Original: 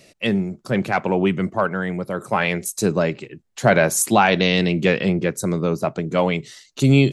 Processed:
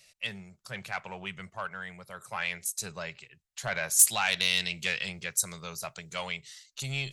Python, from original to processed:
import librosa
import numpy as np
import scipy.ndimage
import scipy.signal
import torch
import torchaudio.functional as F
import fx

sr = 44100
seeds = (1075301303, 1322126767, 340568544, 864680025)

y = fx.high_shelf(x, sr, hz=3300.0, db=11.0, at=(3.99, 6.32))
y = 10.0 ** (-5.0 / 20.0) * np.tanh(y / 10.0 ** (-5.0 / 20.0))
y = fx.tone_stack(y, sr, knobs='10-0-10')
y = F.gain(torch.from_numpy(y), -4.5).numpy()